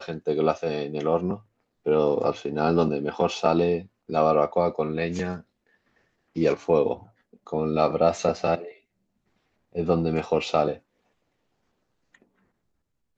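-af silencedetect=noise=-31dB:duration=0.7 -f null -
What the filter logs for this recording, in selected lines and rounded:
silence_start: 5.37
silence_end: 6.36 | silence_duration: 1.00
silence_start: 8.67
silence_end: 9.75 | silence_duration: 1.08
silence_start: 10.74
silence_end: 13.18 | silence_duration: 2.44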